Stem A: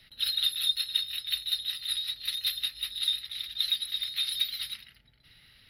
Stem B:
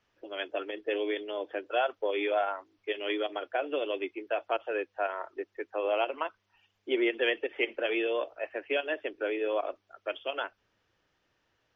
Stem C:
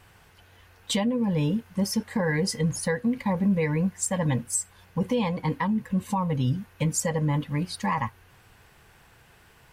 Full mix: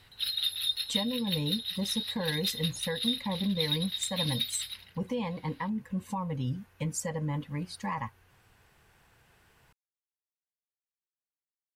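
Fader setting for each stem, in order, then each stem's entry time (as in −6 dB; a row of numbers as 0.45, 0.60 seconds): −3.0 dB, muted, −7.5 dB; 0.00 s, muted, 0.00 s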